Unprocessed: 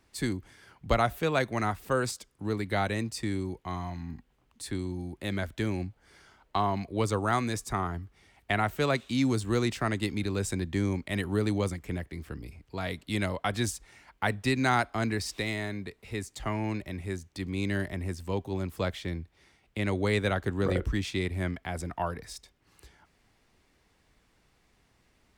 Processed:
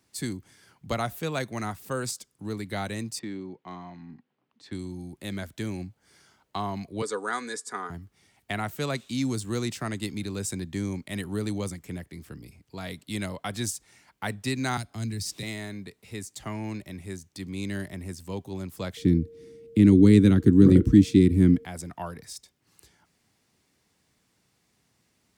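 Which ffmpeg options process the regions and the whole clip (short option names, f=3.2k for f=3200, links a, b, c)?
-filter_complex "[0:a]asettb=1/sr,asplit=3[a][b][c];[a]atrim=end=3.194[d];[b]atrim=start=3.19:end=4.72,asetpts=PTS-STARTPTS,afade=t=in:d=0.004:c=qsin,afade=t=out:st=1.526:d=0.004:c=qsin,highpass=200,lowpass=4.8k,adynamicsmooth=sensitivity=3:basefreq=3.8k[e];[c]atrim=start=4.716[f];[d][e]acrossfade=d=0.004:c1=hsin:c2=qsin[g];[g][f]acrossfade=d=0.004:c1=qsin:c2=hsin,asettb=1/sr,asplit=3[h][i][j];[h]atrim=end=7.024[k];[i]atrim=start=7.02:end=7.9,asetpts=PTS-STARTPTS,afade=t=in:d=0.004:c=qsin,afade=t=out:st=0.876:d=0.004:c=qsin,highpass=410,equalizer=f=420:t=q:w=4:g=9,equalizer=f=680:t=q:w=4:g=-7,equalizer=f=1.6k:t=q:w=4:g=8,equalizer=f=2.7k:t=q:w=4:g=-8,equalizer=f=6.1k:t=q:w=4:g=-6,lowpass=f=9.1k:w=0.5412,lowpass=f=9.1k:w=1.3066,aecho=1:1:4.1:0.47,atrim=end_sample=38808[l];[j]atrim=start=7.896[m];[k][l]acrossfade=d=0.004:c1=hsin:c2=qsin[n];[n][m]acrossfade=d=0.004:c1=qsin:c2=hsin,asettb=1/sr,asplit=3[o][p][q];[o]atrim=end=14.774[r];[p]atrim=start=14.77:end=15.43,asetpts=PTS-STARTPTS,afade=t=in:d=0.004:c=qsin,afade=t=out:st=0.656:d=0.004:c=qsin,acrossover=split=140|3000[s][t][u];[t]acompressor=threshold=-51dB:ratio=2:attack=3.2:release=140:knee=2.83:detection=peak[v];[s][v][u]amix=inputs=3:normalize=0,equalizer=f=180:w=0.37:g=7.5[w];[q]atrim=start=15.426[x];[r][w]acrossfade=d=0.004:c1=hsin:c2=qsin[y];[y][x]acrossfade=d=0.004:c1=qsin:c2=hsin,asettb=1/sr,asplit=3[z][aa][ab];[z]atrim=end=18.974[ac];[aa]atrim=start=18.97:end=21.65,asetpts=PTS-STARTPTS,afade=t=in:d=0.004:c=qsin,afade=t=out:st=2.676:d=0.004:c=qsin,lowshelf=f=440:t=q:w=3:g=13,aeval=exprs='val(0)+0.00891*sin(2*PI*460*n/s)':c=same[ad];[ab]atrim=start=21.646[ae];[ac][ad]acrossfade=d=0.004:c1=hsin:c2=qsin[af];[af][ae]acrossfade=d=0.004:c1=qsin:c2=hsin,highpass=130,bass=f=250:g=7,treble=f=4k:g=9,volume=-4.5dB"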